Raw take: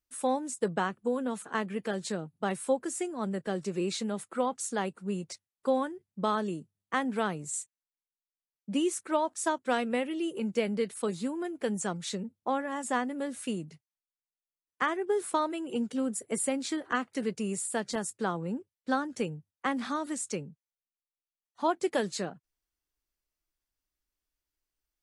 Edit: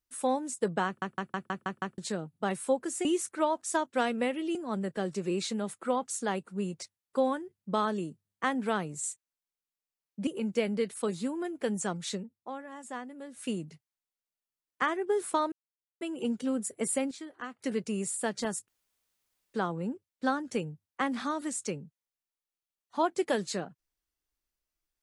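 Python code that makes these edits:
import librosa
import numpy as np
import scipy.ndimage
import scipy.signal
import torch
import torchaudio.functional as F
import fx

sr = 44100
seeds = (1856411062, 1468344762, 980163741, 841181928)

y = fx.edit(x, sr, fx.stutter_over(start_s=0.86, slice_s=0.16, count=7),
    fx.move(start_s=8.77, length_s=1.5, to_s=3.05),
    fx.fade_down_up(start_s=12.16, length_s=1.31, db=-10.0, fade_s=0.12),
    fx.insert_silence(at_s=15.52, length_s=0.49),
    fx.clip_gain(start_s=16.62, length_s=0.48, db=-10.5),
    fx.insert_room_tone(at_s=18.19, length_s=0.86), tone=tone)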